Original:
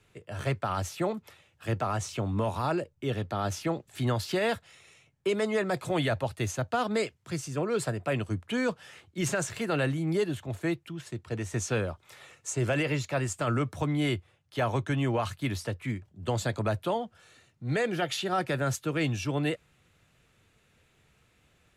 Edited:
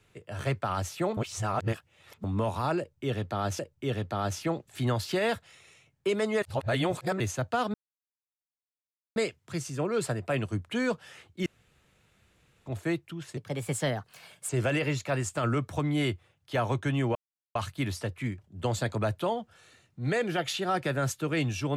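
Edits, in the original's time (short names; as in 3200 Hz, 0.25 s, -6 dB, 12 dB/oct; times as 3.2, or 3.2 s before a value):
1.17–2.24 reverse
2.79–3.59 loop, 2 plays
5.62–6.4 reverse
6.94 insert silence 1.42 s
9.24–10.44 room tone
11.15–12.53 speed 123%
15.19 insert silence 0.40 s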